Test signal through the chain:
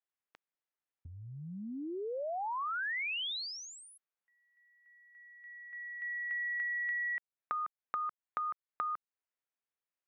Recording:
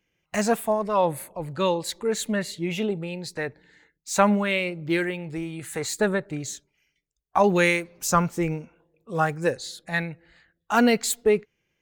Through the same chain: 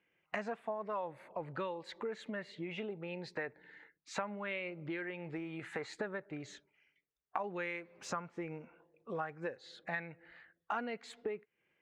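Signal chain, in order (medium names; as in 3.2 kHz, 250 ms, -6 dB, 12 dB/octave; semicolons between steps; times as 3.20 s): Chebyshev low-pass 2 kHz, order 2; compression 12:1, threshold -35 dBFS; high-pass 380 Hz 6 dB/octave; trim +1 dB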